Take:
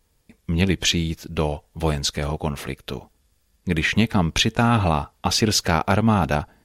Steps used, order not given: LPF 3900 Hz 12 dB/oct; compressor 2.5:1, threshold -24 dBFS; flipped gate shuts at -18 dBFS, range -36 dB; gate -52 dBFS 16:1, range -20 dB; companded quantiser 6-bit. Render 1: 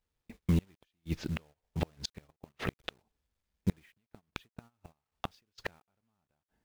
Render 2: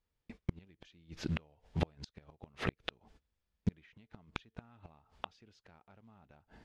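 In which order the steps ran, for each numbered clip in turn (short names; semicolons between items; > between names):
LPF > compressor > flipped gate > companded quantiser > gate; companded quantiser > gate > compressor > flipped gate > LPF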